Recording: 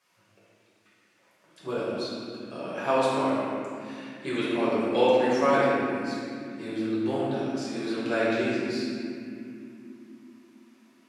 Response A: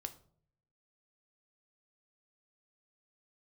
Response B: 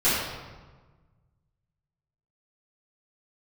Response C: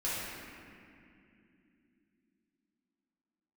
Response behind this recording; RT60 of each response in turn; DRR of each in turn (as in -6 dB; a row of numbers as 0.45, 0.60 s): C; 0.55, 1.4, 2.7 s; 7.5, -14.5, -10.0 dB